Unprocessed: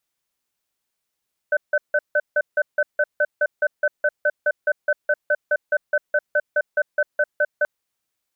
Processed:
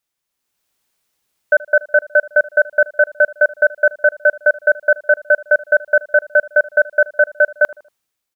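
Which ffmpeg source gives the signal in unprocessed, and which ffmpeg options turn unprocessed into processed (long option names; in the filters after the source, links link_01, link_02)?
-f lavfi -i "aevalsrc='0.126*(sin(2*PI*594*t)+sin(2*PI*1520*t))*clip(min(mod(t,0.21),0.05-mod(t,0.21))/0.005,0,1)':duration=6.13:sample_rate=44100"
-filter_complex "[0:a]dynaudnorm=framelen=120:gausssize=9:maxgain=10dB,asplit=2[link_01][link_02];[link_02]adelay=78,lowpass=frequency=1300:poles=1,volume=-19dB,asplit=2[link_03][link_04];[link_04]adelay=78,lowpass=frequency=1300:poles=1,volume=0.44,asplit=2[link_05][link_06];[link_06]adelay=78,lowpass=frequency=1300:poles=1,volume=0.44[link_07];[link_01][link_03][link_05][link_07]amix=inputs=4:normalize=0"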